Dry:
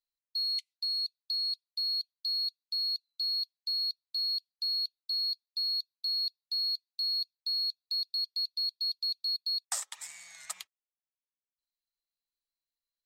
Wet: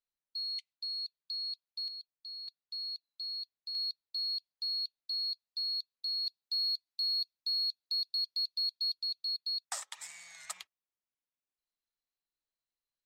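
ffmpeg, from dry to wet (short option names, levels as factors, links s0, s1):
-af "asetnsamples=n=441:p=0,asendcmd='1.88 lowpass f 1000;2.48 lowpass f 1900;3.75 lowpass f 3800;6.27 lowpass f 7900;8.94 lowpass f 4000;9.91 lowpass f 7000;10.57 lowpass f 3500',lowpass=f=2500:p=1"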